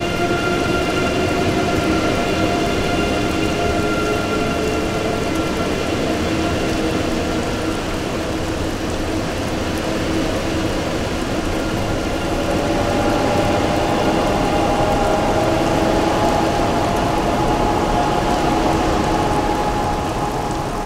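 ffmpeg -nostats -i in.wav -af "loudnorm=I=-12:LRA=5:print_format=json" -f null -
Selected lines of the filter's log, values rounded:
"input_i" : "-18.8",
"input_tp" : "-4.1",
"input_lra" : "3.8",
"input_thresh" : "-28.8",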